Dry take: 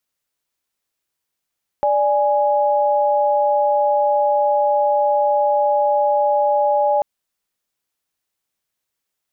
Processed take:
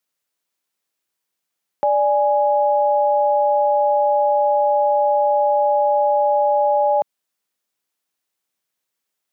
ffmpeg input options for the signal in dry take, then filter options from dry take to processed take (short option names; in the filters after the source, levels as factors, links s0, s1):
-f lavfi -i "aevalsrc='0.15*(sin(2*PI*587.33*t)+sin(2*PI*830.61*t))':d=5.19:s=44100"
-af "highpass=150"